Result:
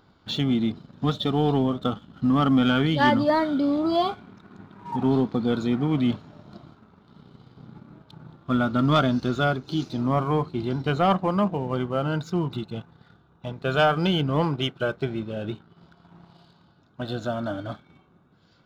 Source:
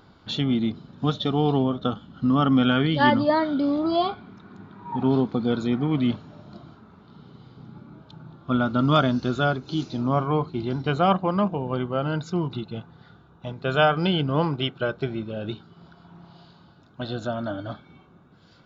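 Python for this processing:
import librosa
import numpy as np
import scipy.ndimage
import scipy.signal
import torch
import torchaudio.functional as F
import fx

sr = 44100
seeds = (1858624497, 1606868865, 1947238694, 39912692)

y = fx.env_lowpass_down(x, sr, base_hz=2700.0, full_db=-33.5, at=(15.48, 17.08))
y = fx.leveller(y, sr, passes=1)
y = y * librosa.db_to_amplitude(-3.5)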